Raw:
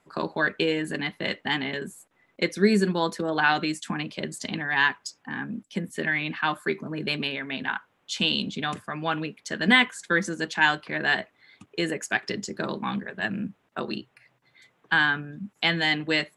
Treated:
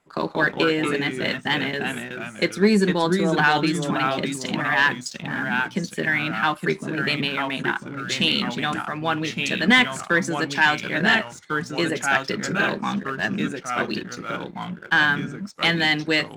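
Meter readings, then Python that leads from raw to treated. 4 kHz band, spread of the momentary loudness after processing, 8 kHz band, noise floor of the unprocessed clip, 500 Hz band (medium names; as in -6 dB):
+3.5 dB, 9 LU, +5.0 dB, -69 dBFS, +4.5 dB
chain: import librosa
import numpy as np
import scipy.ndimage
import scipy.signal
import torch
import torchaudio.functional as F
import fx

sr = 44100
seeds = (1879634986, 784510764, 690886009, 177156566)

y = fx.echo_pitch(x, sr, ms=161, semitones=-2, count=2, db_per_echo=-6.0)
y = fx.leveller(y, sr, passes=1)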